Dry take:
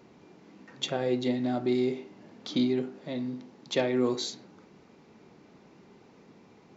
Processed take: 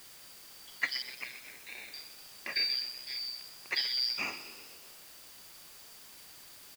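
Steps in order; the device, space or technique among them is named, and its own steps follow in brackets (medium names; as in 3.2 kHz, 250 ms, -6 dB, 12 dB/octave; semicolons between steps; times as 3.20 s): 1.02–1.94 s: elliptic high-pass 2.4 kHz; frequency-shifting echo 125 ms, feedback 61%, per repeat +64 Hz, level -13 dB; split-band scrambled radio (four frequency bands reordered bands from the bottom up 4321; band-pass 380–2900 Hz; white noise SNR 13 dB); trim +3 dB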